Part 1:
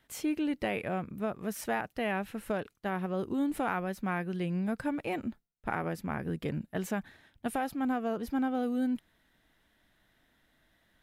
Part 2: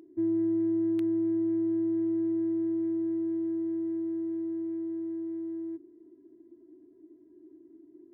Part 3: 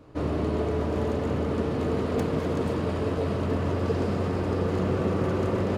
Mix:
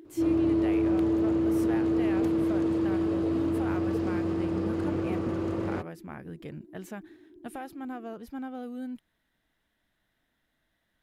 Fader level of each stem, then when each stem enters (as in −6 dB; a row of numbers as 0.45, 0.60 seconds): −7.0, +2.0, −7.5 decibels; 0.00, 0.00, 0.05 seconds